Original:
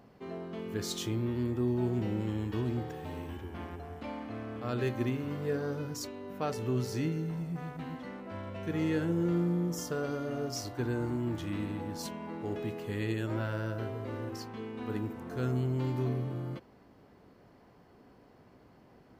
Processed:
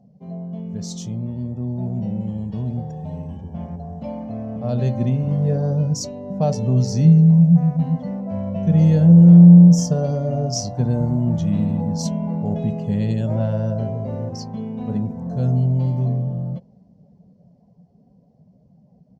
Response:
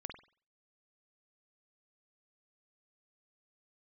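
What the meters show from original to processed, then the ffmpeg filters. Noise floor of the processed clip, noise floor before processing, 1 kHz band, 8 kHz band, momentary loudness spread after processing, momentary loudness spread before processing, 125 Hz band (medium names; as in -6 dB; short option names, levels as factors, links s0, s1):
-55 dBFS, -60 dBFS, +7.0 dB, +11.5 dB, 19 LU, 11 LU, +19.0 dB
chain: -af "afftdn=nr=13:nf=-53,firequalizer=gain_entry='entry(110,0);entry(170,13);entry(320,-16);entry(580,3);entry(1300,-19);entry(5900,2);entry(12000,-17)':delay=0.05:min_phase=1,dynaudnorm=f=260:g=31:m=2.82,volume=1.68"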